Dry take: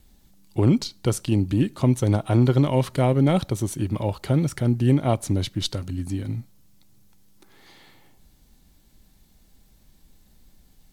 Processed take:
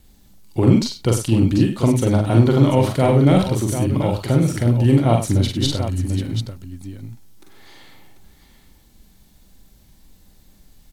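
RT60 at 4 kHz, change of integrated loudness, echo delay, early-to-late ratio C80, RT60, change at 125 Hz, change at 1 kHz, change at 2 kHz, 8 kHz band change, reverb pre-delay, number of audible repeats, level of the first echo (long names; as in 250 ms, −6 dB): no reverb audible, +5.0 dB, 43 ms, no reverb audible, no reverb audible, +5.0 dB, +5.5 dB, +5.5 dB, +5.5 dB, no reverb audible, 3, −4.0 dB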